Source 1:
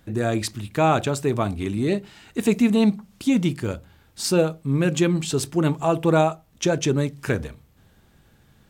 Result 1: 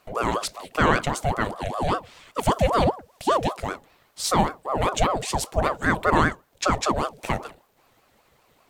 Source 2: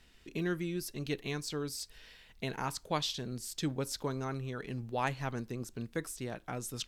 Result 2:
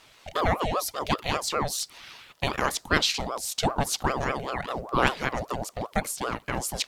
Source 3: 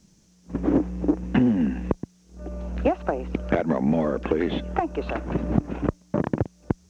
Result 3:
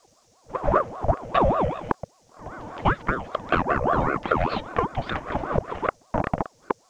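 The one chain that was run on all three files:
high-pass filter 200 Hz 12 dB per octave
ring modulator whose carrier an LFO sweeps 610 Hz, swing 55%, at 5.1 Hz
normalise the peak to −3 dBFS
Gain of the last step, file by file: +2.5, +13.5, +4.0 decibels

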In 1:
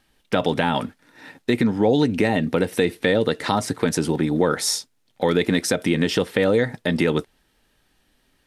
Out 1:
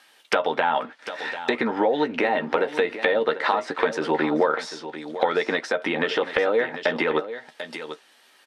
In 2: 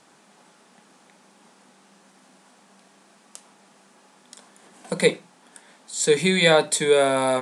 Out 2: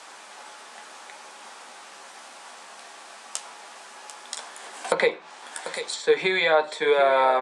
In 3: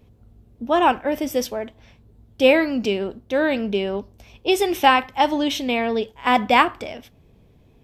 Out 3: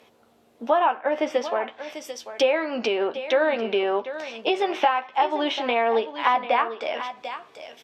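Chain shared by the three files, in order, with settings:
high-pass filter 670 Hz 12 dB per octave
dynamic equaliser 2,200 Hz, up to −4 dB, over −37 dBFS, Q 1.2
downward compressor 8 to 1, threshold −29 dBFS
high-shelf EQ 9,400 Hz −6.5 dB
double-tracking delay 13 ms −8 dB
single-tap delay 743 ms −12.5 dB
treble cut that deepens with the level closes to 2,300 Hz, closed at −33 dBFS
loudness normalisation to −24 LKFS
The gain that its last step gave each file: +11.5, +13.0, +11.0 decibels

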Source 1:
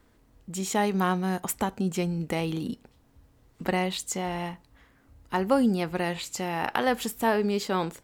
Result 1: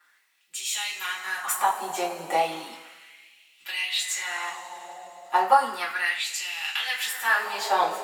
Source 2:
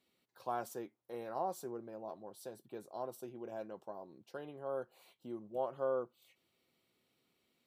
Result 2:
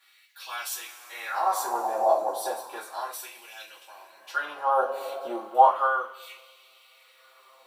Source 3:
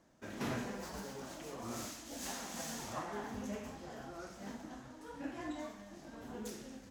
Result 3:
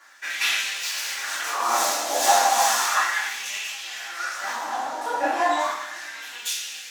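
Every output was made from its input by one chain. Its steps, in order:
coupled-rooms reverb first 0.28 s, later 3.2 s, from −19 dB, DRR −7 dB
auto-filter high-pass sine 0.34 Hz 670–2,800 Hz
normalise the peak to −6 dBFS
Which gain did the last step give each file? −3.5, +11.0, +14.0 decibels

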